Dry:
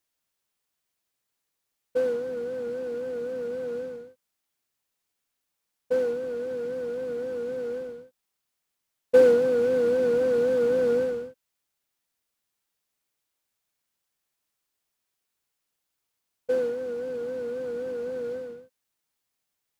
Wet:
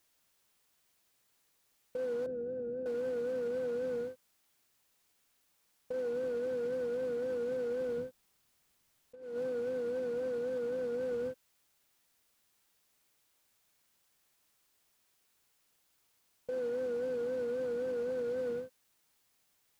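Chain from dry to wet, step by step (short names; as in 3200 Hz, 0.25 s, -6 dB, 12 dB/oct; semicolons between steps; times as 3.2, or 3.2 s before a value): 7.97–9.23 low shelf 220 Hz +7.5 dB; negative-ratio compressor -28 dBFS, ratio -0.5; limiter -34 dBFS, peak gain reduction 15 dB; 2.26–2.86 running mean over 42 samples; gain +4 dB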